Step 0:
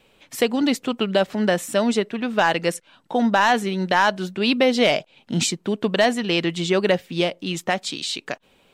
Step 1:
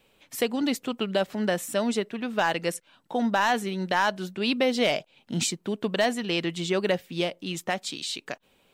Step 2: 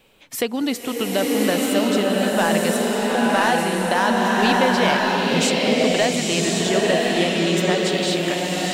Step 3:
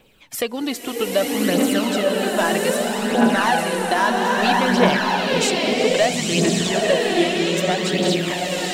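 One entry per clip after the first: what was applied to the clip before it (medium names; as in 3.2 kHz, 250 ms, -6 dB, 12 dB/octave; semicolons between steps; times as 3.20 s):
treble shelf 12 kHz +10.5 dB; trim -6 dB
in parallel at +1.5 dB: compression, threshold -32 dBFS, peak gain reduction 12.5 dB; on the sum: swelling reverb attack 1080 ms, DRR -4 dB
phaser 0.62 Hz, delay 3.1 ms, feedback 49%; trim -1 dB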